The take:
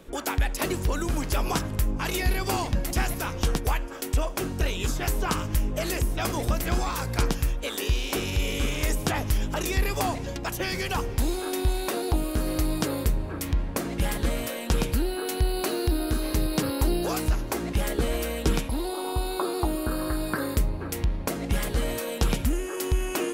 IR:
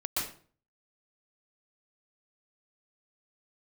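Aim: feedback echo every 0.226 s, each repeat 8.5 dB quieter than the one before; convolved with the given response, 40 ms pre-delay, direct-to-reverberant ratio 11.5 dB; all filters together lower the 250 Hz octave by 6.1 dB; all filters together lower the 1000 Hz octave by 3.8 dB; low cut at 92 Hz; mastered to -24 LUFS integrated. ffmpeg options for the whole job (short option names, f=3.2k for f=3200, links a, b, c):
-filter_complex "[0:a]highpass=92,equalizer=f=250:t=o:g=-8.5,equalizer=f=1k:t=o:g=-4.5,aecho=1:1:226|452|678|904:0.376|0.143|0.0543|0.0206,asplit=2[a][b];[1:a]atrim=start_sample=2205,adelay=40[c];[b][c]afir=irnorm=-1:irlink=0,volume=-17.5dB[d];[a][d]amix=inputs=2:normalize=0,volume=7dB"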